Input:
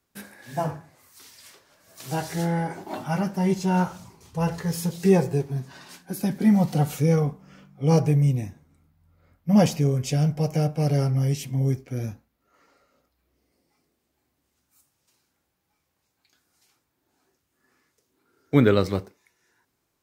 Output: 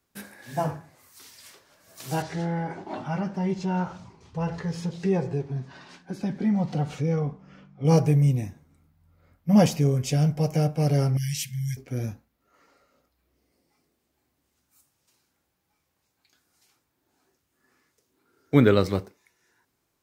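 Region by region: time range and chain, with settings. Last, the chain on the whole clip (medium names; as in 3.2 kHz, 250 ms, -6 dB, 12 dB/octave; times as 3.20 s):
2.22–7.85 s: distance through air 120 m + compression 1.5:1, threshold -29 dBFS
11.17–11.77 s: brick-wall FIR band-stop 220–1500 Hz + tilt shelf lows -6 dB, about 1.1 kHz
whole clip: none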